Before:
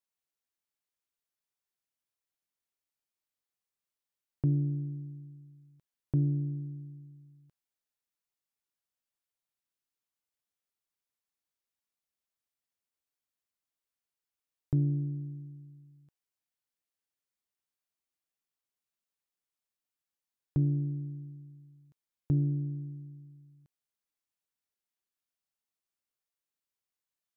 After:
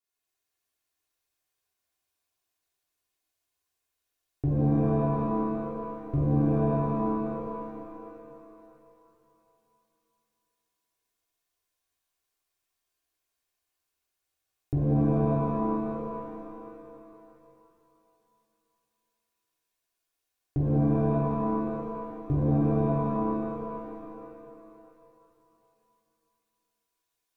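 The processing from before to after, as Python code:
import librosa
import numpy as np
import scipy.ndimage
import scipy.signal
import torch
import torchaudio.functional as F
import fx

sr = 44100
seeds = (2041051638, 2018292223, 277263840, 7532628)

y = x + 0.83 * np.pad(x, (int(2.8 * sr / 1000.0), 0))[:len(x)]
y = fx.cheby_harmonics(y, sr, harmonics=(3,), levels_db=(-20,), full_scale_db=-19.0)
y = fx.rev_shimmer(y, sr, seeds[0], rt60_s=2.9, semitones=7, shimmer_db=-2, drr_db=-7.0)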